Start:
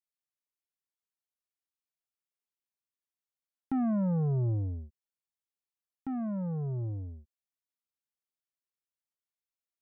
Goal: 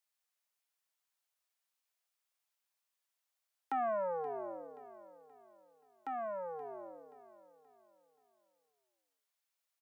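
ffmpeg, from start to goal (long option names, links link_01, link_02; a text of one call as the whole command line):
ffmpeg -i in.wav -filter_complex "[0:a]highpass=frequency=550:width=0.5412,highpass=frequency=550:width=1.3066,asplit=2[link_01][link_02];[link_02]aecho=0:1:527|1054|1581|2108:0.178|0.0711|0.0285|0.0114[link_03];[link_01][link_03]amix=inputs=2:normalize=0,volume=7.5dB" out.wav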